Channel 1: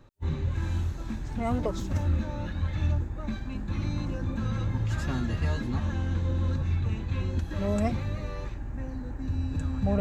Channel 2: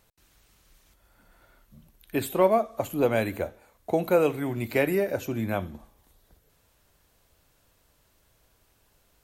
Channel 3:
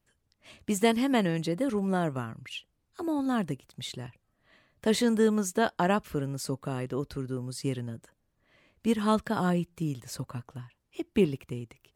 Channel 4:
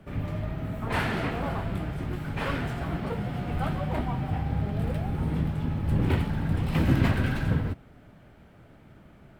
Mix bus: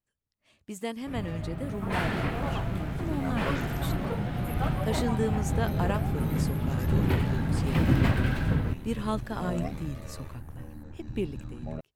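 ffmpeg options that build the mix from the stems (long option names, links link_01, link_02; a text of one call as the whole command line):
ffmpeg -i stem1.wav -i stem2.wav -i stem3.wav -i stem4.wav -filter_complex "[0:a]aeval=exprs='val(0)*sin(2*PI*38*n/s)':channel_layout=same,adelay=1800,volume=-9dB[link_01];[1:a]highshelf=frequency=7700:width_type=q:width=3:gain=11.5,acrossover=split=170[link_02][link_03];[link_03]acompressor=threshold=-34dB:ratio=6[link_04];[link_02][link_04]amix=inputs=2:normalize=0,adelay=1600,volume=-16.5dB[link_05];[2:a]dynaudnorm=framelen=350:gausssize=3:maxgain=4dB,volume=-14.5dB[link_06];[3:a]adelay=1000,volume=-5.5dB[link_07];[link_01][link_05][link_06][link_07]amix=inputs=4:normalize=0,dynaudnorm=framelen=730:gausssize=5:maxgain=5dB" out.wav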